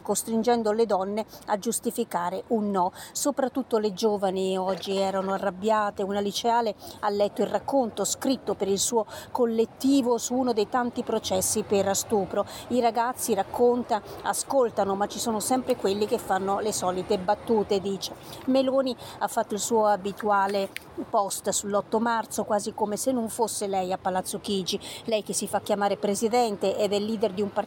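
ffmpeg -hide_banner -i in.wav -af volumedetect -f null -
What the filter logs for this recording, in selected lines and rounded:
mean_volume: -26.1 dB
max_volume: -12.0 dB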